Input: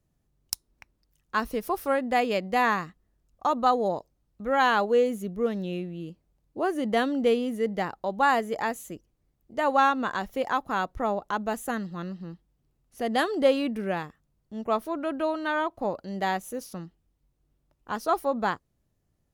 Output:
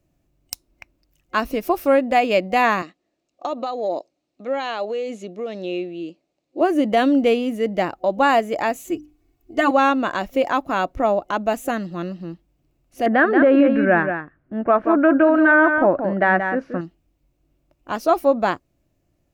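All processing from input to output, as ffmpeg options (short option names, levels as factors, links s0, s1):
-filter_complex "[0:a]asettb=1/sr,asplit=3[s0][s1][s2];[s0]atrim=end=2.824[s3];[s1]atrim=start=2.82:end=6.61,asetpts=PTS-STARTPTS,afade=t=in:d=0.004:c=qsin,afade=t=out:st=3.786:d=0.004:c=qsin,acompressor=threshold=0.0447:ratio=5:attack=3.2:release=140:knee=1:detection=peak,highpass=310,equalizer=f=1000:t=q:w=4:g=-4,equalizer=f=1500:t=q:w=4:g=-5,equalizer=f=4100:t=q:w=4:g=5,lowpass=f=7800:w=0.5412,lowpass=f=7800:w=1.3066[s4];[s2]atrim=start=6.606[s5];[s3][s4]acrossfade=d=0.004:c1=hsin:c2=qsin[s6];[s6][s5]acrossfade=d=0.004:c1=qsin:c2=hsin,asettb=1/sr,asplit=3[s7][s8][s9];[s7]atrim=end=8.874[s10];[s8]atrim=start=8.87:end=9.71,asetpts=PTS-STARTPTS,afade=t=in:d=0.004:c=qsin,afade=t=out:st=0.836:d=0.004:c=qsin,equalizer=f=610:w=4.3:g=-4.5,bandreject=f=50:t=h:w=6,bandreject=f=100:t=h:w=6,bandreject=f=150:t=h:w=6,bandreject=f=200:t=h:w=6,bandreject=f=250:t=h:w=6,bandreject=f=300:t=h:w=6,aecho=1:1:2.7:1,atrim=end_sample=37044[s11];[s9]atrim=start=9.706[s12];[s10][s11]acrossfade=d=0.004:c1=hsin:c2=qsin[s13];[s13][s12]acrossfade=d=0.004:c1=qsin:c2=hsin,asettb=1/sr,asplit=3[s14][s15][s16];[s14]atrim=end=13.064[s17];[s15]atrim=start=13.06:end=16.81,asetpts=PTS-STARTPTS,afade=t=in:d=0.004:c=qsin,afade=t=out:st=3.746:d=0.004:c=qsin,lowpass=f=1600:t=q:w=5.8,equalizer=f=230:w=0.51:g=4.5,aecho=1:1:179:0.376,atrim=end_sample=165375[s18];[s16]atrim=start=16.806[s19];[s17][s18]acrossfade=d=0.004:c1=hsin:c2=qsin[s20];[s20][s19]acrossfade=d=0.004:c1=qsin:c2=hsin,superequalizer=6b=2.24:8b=2:12b=1.78:16b=0.631,alimiter=level_in=3.35:limit=0.891:release=50:level=0:latency=1,volume=0.531"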